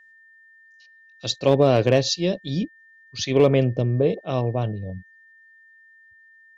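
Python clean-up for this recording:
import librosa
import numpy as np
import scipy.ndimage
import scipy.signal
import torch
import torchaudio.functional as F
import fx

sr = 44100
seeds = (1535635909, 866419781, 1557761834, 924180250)

y = fx.fix_declip(x, sr, threshold_db=-8.0)
y = fx.notch(y, sr, hz=1800.0, q=30.0)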